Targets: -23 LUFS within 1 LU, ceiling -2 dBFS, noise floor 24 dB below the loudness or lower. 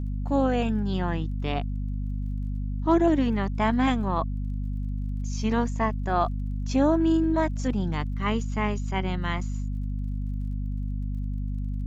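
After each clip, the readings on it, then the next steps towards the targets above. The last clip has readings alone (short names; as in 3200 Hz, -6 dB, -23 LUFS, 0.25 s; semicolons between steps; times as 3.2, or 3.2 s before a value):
ticks 36/s; hum 50 Hz; harmonics up to 250 Hz; hum level -27 dBFS; loudness -27.5 LUFS; peak -10.5 dBFS; loudness target -23.0 LUFS
-> de-click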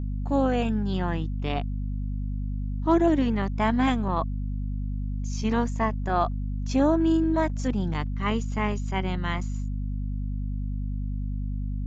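ticks 0/s; hum 50 Hz; harmonics up to 250 Hz; hum level -27 dBFS
-> de-hum 50 Hz, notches 5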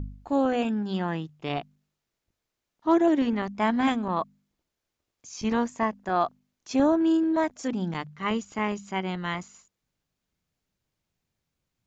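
hum none; loudness -27.0 LUFS; peak -12.0 dBFS; loudness target -23.0 LUFS
-> gain +4 dB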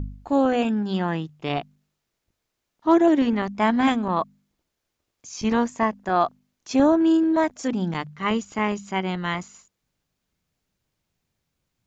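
loudness -23.0 LUFS; peak -8.0 dBFS; noise floor -80 dBFS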